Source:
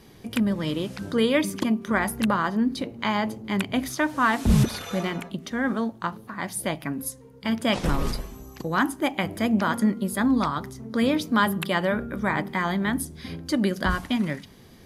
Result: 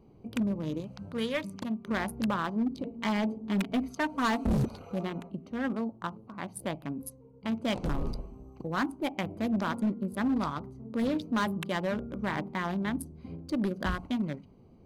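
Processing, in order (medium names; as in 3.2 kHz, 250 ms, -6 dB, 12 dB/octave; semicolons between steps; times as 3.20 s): local Wiener filter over 25 samples; 0.80–1.85 s: peaking EQ 340 Hz -13 dB 0.74 oct; 2.84–4.58 s: comb 4.4 ms, depth 83%; overload inside the chain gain 18 dB; trim -5.5 dB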